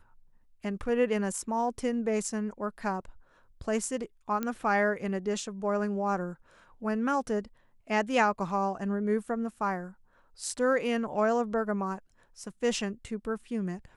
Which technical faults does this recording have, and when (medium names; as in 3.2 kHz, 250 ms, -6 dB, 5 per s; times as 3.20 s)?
4.43 s: pop -18 dBFS